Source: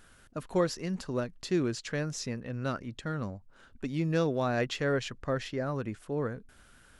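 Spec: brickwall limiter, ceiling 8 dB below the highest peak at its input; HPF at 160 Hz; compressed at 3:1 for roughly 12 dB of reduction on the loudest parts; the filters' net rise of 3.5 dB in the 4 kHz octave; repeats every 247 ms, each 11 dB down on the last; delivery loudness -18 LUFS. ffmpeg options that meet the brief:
-af "highpass=160,equalizer=f=4000:t=o:g=4.5,acompressor=threshold=0.01:ratio=3,alimiter=level_in=2.82:limit=0.0631:level=0:latency=1,volume=0.355,aecho=1:1:247|494|741:0.282|0.0789|0.0221,volume=20"

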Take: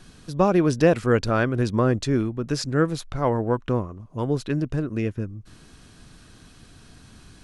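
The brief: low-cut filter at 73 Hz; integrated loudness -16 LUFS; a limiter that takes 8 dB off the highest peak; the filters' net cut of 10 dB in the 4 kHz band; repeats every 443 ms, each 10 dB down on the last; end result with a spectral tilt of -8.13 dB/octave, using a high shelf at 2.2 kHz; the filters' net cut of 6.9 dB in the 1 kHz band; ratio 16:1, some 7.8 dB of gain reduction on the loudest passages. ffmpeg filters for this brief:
-af "highpass=73,equalizer=f=1000:t=o:g=-7.5,highshelf=f=2200:g=-6.5,equalizer=f=4000:t=o:g=-6,acompressor=threshold=0.0794:ratio=16,alimiter=limit=0.075:level=0:latency=1,aecho=1:1:443|886|1329|1772:0.316|0.101|0.0324|0.0104,volume=6.31"

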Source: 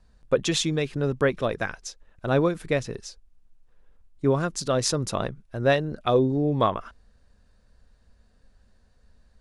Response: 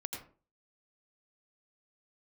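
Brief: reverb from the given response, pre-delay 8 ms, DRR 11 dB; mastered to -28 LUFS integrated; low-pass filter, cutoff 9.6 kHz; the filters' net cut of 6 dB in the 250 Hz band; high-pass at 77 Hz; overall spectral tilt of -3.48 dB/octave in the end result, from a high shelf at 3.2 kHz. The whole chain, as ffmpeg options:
-filter_complex "[0:a]highpass=77,lowpass=9600,equalizer=f=250:t=o:g=-8.5,highshelf=f=3200:g=7,asplit=2[s0][s1];[1:a]atrim=start_sample=2205,adelay=8[s2];[s1][s2]afir=irnorm=-1:irlink=0,volume=0.299[s3];[s0][s3]amix=inputs=2:normalize=0,volume=0.794"

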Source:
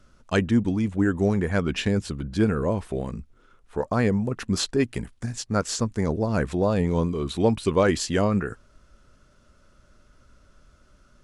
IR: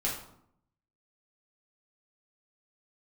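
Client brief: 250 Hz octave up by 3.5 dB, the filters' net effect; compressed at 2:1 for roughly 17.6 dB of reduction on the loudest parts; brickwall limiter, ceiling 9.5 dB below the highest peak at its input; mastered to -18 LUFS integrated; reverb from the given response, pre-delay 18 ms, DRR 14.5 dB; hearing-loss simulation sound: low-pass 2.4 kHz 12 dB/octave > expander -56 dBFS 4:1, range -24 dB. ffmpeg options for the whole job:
-filter_complex "[0:a]equalizer=f=250:t=o:g=4.5,acompressor=threshold=0.00447:ratio=2,alimiter=level_in=2.66:limit=0.0631:level=0:latency=1,volume=0.376,asplit=2[s0][s1];[1:a]atrim=start_sample=2205,adelay=18[s2];[s1][s2]afir=irnorm=-1:irlink=0,volume=0.0944[s3];[s0][s3]amix=inputs=2:normalize=0,lowpass=2400,agate=range=0.0631:threshold=0.00158:ratio=4,volume=16.8"

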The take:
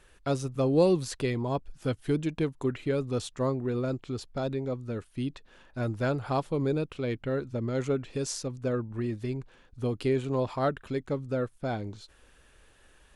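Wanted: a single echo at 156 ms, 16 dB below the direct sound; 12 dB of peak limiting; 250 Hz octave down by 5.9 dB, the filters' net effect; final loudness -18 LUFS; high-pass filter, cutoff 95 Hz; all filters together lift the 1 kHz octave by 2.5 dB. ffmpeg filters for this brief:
-af "highpass=95,equalizer=f=250:t=o:g=-8,equalizer=f=1000:t=o:g=4,alimiter=level_in=1.19:limit=0.0631:level=0:latency=1,volume=0.841,aecho=1:1:156:0.158,volume=8.41"

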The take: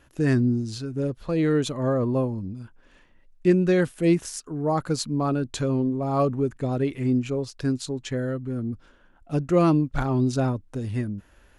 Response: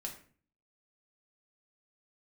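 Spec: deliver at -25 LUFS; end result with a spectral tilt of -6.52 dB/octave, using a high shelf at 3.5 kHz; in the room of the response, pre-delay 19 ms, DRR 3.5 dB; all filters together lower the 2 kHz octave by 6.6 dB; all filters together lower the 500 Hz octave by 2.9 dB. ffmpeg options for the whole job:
-filter_complex "[0:a]equalizer=f=500:t=o:g=-3.5,equalizer=f=2000:t=o:g=-7.5,highshelf=f=3500:g=-4,asplit=2[s0][s1];[1:a]atrim=start_sample=2205,adelay=19[s2];[s1][s2]afir=irnorm=-1:irlink=0,volume=0.794[s3];[s0][s3]amix=inputs=2:normalize=0,volume=0.944"

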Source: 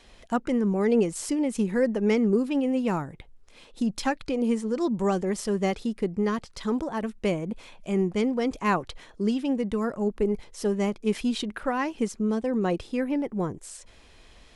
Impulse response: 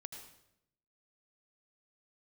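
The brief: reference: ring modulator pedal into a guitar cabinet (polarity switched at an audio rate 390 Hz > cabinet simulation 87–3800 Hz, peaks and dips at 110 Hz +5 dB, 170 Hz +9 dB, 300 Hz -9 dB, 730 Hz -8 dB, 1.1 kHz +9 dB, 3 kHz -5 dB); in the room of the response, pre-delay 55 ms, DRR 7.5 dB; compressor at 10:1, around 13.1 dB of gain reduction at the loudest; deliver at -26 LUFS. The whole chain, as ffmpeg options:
-filter_complex "[0:a]acompressor=threshold=0.0251:ratio=10,asplit=2[s0][s1];[1:a]atrim=start_sample=2205,adelay=55[s2];[s1][s2]afir=irnorm=-1:irlink=0,volume=0.668[s3];[s0][s3]amix=inputs=2:normalize=0,aeval=exprs='val(0)*sgn(sin(2*PI*390*n/s))':c=same,highpass=87,equalizer=f=110:t=q:w=4:g=5,equalizer=f=170:t=q:w=4:g=9,equalizer=f=300:t=q:w=4:g=-9,equalizer=f=730:t=q:w=4:g=-8,equalizer=f=1100:t=q:w=4:g=9,equalizer=f=3000:t=q:w=4:g=-5,lowpass=f=3800:w=0.5412,lowpass=f=3800:w=1.3066,volume=2.66"

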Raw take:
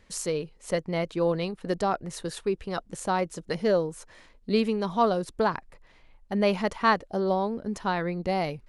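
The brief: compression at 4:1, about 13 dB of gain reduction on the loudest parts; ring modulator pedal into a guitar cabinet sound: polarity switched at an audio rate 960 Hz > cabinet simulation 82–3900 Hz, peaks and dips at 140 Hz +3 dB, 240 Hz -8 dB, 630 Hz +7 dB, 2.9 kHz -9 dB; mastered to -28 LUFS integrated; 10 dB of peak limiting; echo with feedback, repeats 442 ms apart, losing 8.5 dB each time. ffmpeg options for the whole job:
-af "acompressor=threshold=0.02:ratio=4,alimiter=level_in=2.24:limit=0.0631:level=0:latency=1,volume=0.447,aecho=1:1:442|884|1326|1768:0.376|0.143|0.0543|0.0206,aeval=exprs='val(0)*sgn(sin(2*PI*960*n/s))':c=same,highpass=82,equalizer=f=140:t=q:w=4:g=3,equalizer=f=240:t=q:w=4:g=-8,equalizer=f=630:t=q:w=4:g=7,equalizer=f=2900:t=q:w=4:g=-9,lowpass=f=3900:w=0.5412,lowpass=f=3900:w=1.3066,volume=3.76"

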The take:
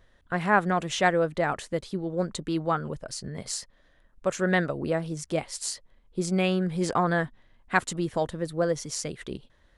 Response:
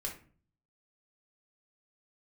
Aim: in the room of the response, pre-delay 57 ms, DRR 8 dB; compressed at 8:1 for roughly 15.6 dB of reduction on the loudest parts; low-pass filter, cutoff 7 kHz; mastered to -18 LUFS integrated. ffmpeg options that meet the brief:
-filter_complex "[0:a]lowpass=7000,acompressor=threshold=0.0224:ratio=8,asplit=2[s0][s1];[1:a]atrim=start_sample=2205,adelay=57[s2];[s1][s2]afir=irnorm=-1:irlink=0,volume=0.376[s3];[s0][s3]amix=inputs=2:normalize=0,volume=9.44"

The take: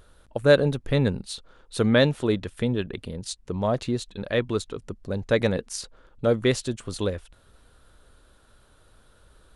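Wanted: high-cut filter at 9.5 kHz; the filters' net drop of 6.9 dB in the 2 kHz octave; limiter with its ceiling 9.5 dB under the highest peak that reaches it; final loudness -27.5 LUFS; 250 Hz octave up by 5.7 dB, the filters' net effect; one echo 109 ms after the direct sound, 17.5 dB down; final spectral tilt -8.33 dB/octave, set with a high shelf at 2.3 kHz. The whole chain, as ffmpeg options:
-af "lowpass=9500,equalizer=f=250:t=o:g=7,equalizer=f=2000:t=o:g=-6,highshelf=f=2300:g=-6.5,alimiter=limit=0.211:level=0:latency=1,aecho=1:1:109:0.133,volume=0.891"

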